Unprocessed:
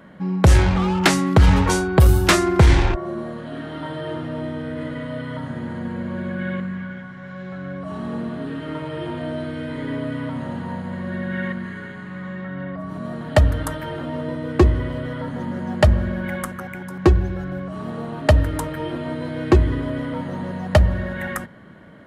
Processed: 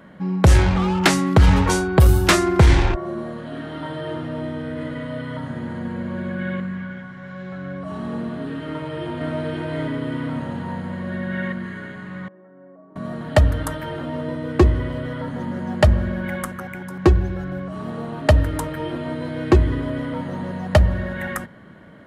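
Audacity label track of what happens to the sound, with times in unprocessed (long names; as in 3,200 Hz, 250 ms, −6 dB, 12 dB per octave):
8.680000	9.350000	delay throw 520 ms, feedback 55%, level −2 dB
12.280000	12.960000	four-pole ladder band-pass 470 Hz, resonance 30%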